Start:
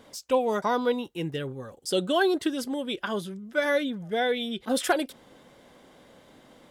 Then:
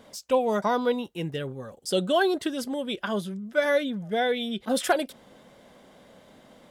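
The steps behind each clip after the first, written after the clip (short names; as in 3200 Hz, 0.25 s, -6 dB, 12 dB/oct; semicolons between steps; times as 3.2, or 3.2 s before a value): thirty-one-band EQ 200 Hz +5 dB, 315 Hz -3 dB, 630 Hz +4 dB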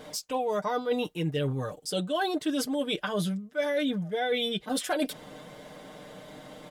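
comb 6.6 ms, depth 74%; reverse; compressor 10:1, threshold -31 dBFS, peak gain reduction 17.5 dB; reverse; gain +5.5 dB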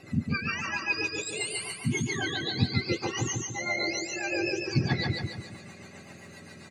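spectrum mirrored in octaves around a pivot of 1100 Hz; rotary speaker horn 7.5 Hz; on a send: feedback echo 0.144 s, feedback 47%, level -3 dB; on the sum: gain +1.5 dB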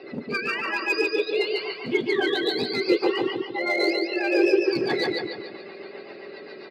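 downsampling 11025 Hz; in parallel at -3.5 dB: hard clip -27.5 dBFS, distortion -8 dB; on the sum: resonant high-pass 400 Hz, resonance Q 4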